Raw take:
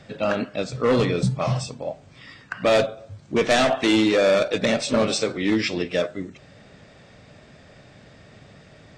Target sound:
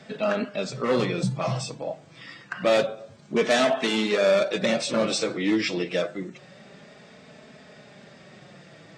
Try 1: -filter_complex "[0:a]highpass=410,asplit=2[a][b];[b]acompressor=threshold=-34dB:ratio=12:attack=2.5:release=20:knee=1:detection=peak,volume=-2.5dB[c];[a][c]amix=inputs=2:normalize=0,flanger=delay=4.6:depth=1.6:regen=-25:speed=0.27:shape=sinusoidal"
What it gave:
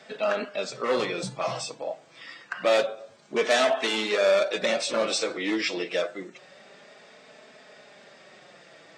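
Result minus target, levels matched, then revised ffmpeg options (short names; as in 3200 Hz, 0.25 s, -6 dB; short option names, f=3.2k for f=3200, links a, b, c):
125 Hz band -11.5 dB
-filter_complex "[0:a]highpass=150,asplit=2[a][b];[b]acompressor=threshold=-34dB:ratio=12:attack=2.5:release=20:knee=1:detection=peak,volume=-2.5dB[c];[a][c]amix=inputs=2:normalize=0,flanger=delay=4.6:depth=1.6:regen=-25:speed=0.27:shape=sinusoidal"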